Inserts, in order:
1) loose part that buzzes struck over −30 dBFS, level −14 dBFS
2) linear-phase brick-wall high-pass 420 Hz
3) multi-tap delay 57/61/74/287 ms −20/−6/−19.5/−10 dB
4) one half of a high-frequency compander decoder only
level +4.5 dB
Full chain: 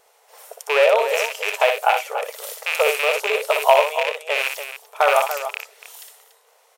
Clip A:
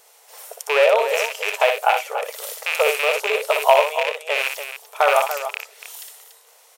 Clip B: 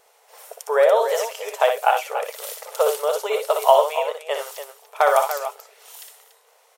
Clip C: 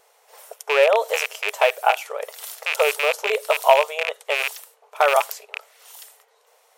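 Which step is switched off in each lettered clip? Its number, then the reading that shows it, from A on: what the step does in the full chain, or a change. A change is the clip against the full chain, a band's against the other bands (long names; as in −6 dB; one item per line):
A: 4, change in momentary loudness spread +3 LU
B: 1, 2 kHz band −7.5 dB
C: 3, change in momentary loudness spread +2 LU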